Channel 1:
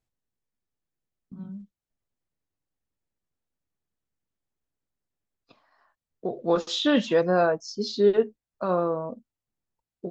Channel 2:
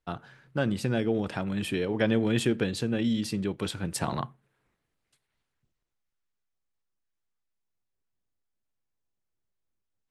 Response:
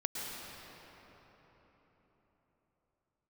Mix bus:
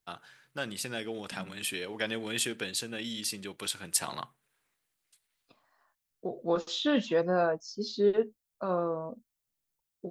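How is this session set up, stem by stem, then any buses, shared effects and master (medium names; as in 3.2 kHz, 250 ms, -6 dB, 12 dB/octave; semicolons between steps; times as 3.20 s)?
-5.5 dB, 0.00 s, no send, none
-5.0 dB, 0.00 s, no send, tilt EQ +4 dB/octave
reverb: none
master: none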